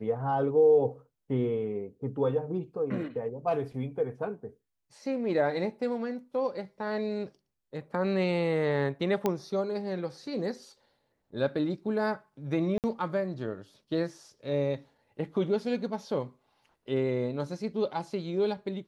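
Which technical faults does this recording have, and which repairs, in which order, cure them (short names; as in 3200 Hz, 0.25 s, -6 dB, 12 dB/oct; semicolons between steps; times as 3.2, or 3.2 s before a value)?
9.26 pop -14 dBFS
12.78–12.84 gap 58 ms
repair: de-click; interpolate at 12.78, 58 ms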